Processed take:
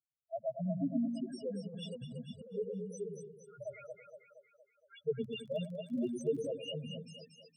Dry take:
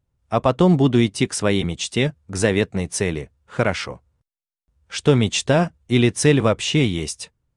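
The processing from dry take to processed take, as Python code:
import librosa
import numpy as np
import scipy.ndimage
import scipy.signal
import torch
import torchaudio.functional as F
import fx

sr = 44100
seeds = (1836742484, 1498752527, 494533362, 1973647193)

y = fx.peak_eq(x, sr, hz=320.0, db=-5.0, octaves=0.29)
y = fx.spec_topn(y, sr, count=1)
y = scipy.signal.sosfilt(scipy.signal.butter(4, 200.0, 'highpass', fs=sr, output='sos'), y)
y = fx.echo_split(y, sr, split_hz=470.0, low_ms=107, high_ms=233, feedback_pct=52, wet_db=-5.5)
y = fx.over_compress(y, sr, threshold_db=-40.0, ratio=-1.0, at=(1.67, 2.53), fade=0.02)
y = fx.dmg_crackle(y, sr, seeds[0], per_s=31.0, level_db=-43.0, at=(5.21, 6.5), fade=0.02)
y = F.gain(torch.from_numpy(y), -8.5).numpy()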